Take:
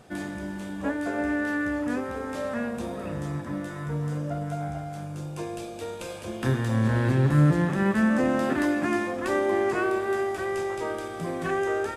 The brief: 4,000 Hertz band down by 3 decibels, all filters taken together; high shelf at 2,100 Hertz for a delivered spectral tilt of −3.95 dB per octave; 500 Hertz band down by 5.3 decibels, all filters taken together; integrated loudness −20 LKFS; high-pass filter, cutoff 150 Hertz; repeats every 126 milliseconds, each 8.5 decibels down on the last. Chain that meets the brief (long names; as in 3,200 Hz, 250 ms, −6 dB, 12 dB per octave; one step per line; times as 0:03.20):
high-pass filter 150 Hz
parametric band 500 Hz −7.5 dB
high-shelf EQ 2,100 Hz +3.5 dB
parametric band 4,000 Hz −7.5 dB
repeating echo 126 ms, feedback 38%, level −8.5 dB
level +9.5 dB